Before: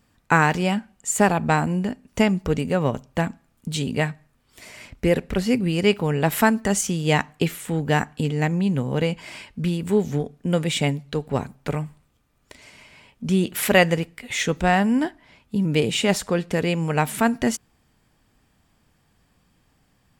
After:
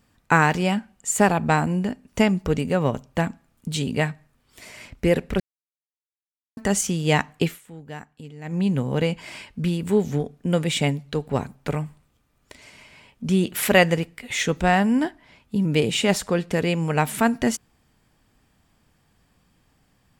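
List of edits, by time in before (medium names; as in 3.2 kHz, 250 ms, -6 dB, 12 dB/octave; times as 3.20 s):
5.40–6.57 s: mute
7.44–8.61 s: dip -16.5 dB, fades 0.17 s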